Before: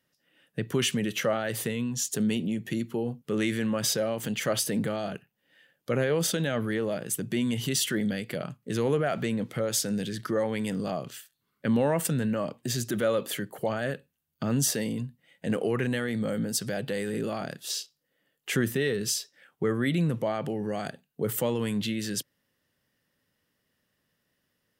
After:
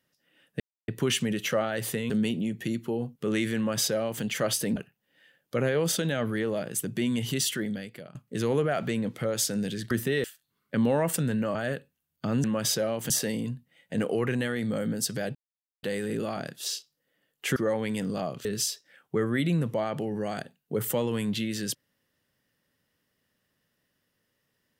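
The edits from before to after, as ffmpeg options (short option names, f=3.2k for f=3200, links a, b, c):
-filter_complex "[0:a]asplit=13[a][b][c][d][e][f][g][h][i][j][k][l][m];[a]atrim=end=0.6,asetpts=PTS-STARTPTS,afade=t=out:st=0.596:d=0.004:c=hsin,apad=pad_dur=0.28[n];[b]atrim=start=0.6:end=1.822,asetpts=PTS-STARTPTS,afade=t=in:d=0.004:c=hsin[o];[c]atrim=start=2.158:end=4.822[p];[d]atrim=start=5.108:end=8.5,asetpts=PTS-STARTPTS,afade=t=out:st=2.602:d=0.79:silence=0.141254[q];[e]atrim=start=8.5:end=10.262,asetpts=PTS-STARTPTS,afade=t=in:d=0.004:c=hsin:silence=0.141254[r];[f]atrim=start=18.598:end=18.932[s];[g]atrim=start=11.148:end=12.462[t];[h]atrim=start=13.728:end=14.622[u];[i]atrim=start=3.628:end=4.292[v];[j]atrim=start=14.618:end=16.87,asetpts=PTS-STARTPTS,afade=t=out:st=2.248:d=0.004:c=hsin,apad=pad_dur=0.48[w];[k]atrim=start=16.87:end=18.602,asetpts=PTS-STARTPTS,afade=t=in:d=0.004:c=hsin[x];[l]atrim=start=10.258:end=11.152[y];[m]atrim=start=18.928[z];[n][o]concat=n=2:v=0:a=1[aa];[aa][p]acrossfade=d=0.004:c1=hsin:c2=hsin[ab];[q][r]concat=n=2:v=0:a=1[ac];[ab][ac]acrossfade=d=0.004:c1=hsin:c2=hsin[ad];[ad][s]acrossfade=d=0.004:c1=hsin:c2=hsin[ae];[ae][t]acrossfade=d=0.004:c1=hsin:c2=hsin[af];[af][u]acrossfade=d=0.004:c1=hsin:c2=hsin[ag];[ag][v]acrossfade=d=0.004:c1=hsin:c2=hsin[ah];[w][x]concat=n=2:v=0:a=1[ai];[ah][ai]acrossfade=d=0.004:c1=hsin:c2=hsin[aj];[aj][y]acrossfade=d=0.004:c1=hsin:c2=hsin[ak];[ak][z]acrossfade=d=0.004:c1=hsin:c2=hsin"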